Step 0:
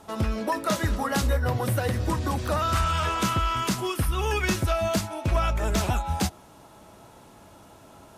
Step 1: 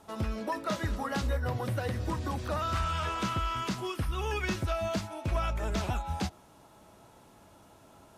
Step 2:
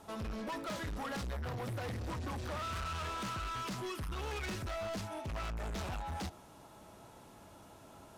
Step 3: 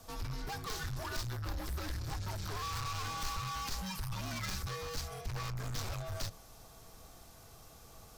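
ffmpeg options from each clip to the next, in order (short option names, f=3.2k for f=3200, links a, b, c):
-filter_complex "[0:a]acrossover=split=6000[a][b];[b]acompressor=threshold=-47dB:ratio=4:attack=1:release=60[c];[a][c]amix=inputs=2:normalize=0,volume=-6.5dB"
-af "asoftclip=type=tanh:threshold=-38dB,volume=1dB"
-af "equalizer=f=160:t=o:w=0.67:g=11,equalizer=f=630:t=o:w=0.67:g=-4,equalizer=f=1.6k:t=o:w=0.67:g=3,equalizer=f=4k:t=o:w=0.67:g=4,equalizer=f=10k:t=o:w=0.67:g=-7,afreqshift=-180,aexciter=amount=4.3:drive=2.3:freq=4.6k,volume=-1.5dB"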